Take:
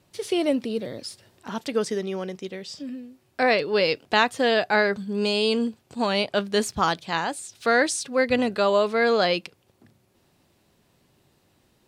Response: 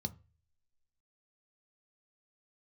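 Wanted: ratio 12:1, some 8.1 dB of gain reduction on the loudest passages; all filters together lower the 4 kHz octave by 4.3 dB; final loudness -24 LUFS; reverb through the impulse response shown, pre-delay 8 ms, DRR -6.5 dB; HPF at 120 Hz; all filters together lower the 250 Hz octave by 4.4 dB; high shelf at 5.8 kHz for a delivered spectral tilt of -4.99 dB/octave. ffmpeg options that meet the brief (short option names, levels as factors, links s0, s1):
-filter_complex "[0:a]highpass=120,equalizer=f=250:t=o:g=-5,equalizer=f=4000:t=o:g=-7.5,highshelf=f=5800:g=5,acompressor=threshold=0.0631:ratio=12,asplit=2[s0][s1];[1:a]atrim=start_sample=2205,adelay=8[s2];[s1][s2]afir=irnorm=-1:irlink=0,volume=2.37[s3];[s0][s3]amix=inputs=2:normalize=0,volume=0.631"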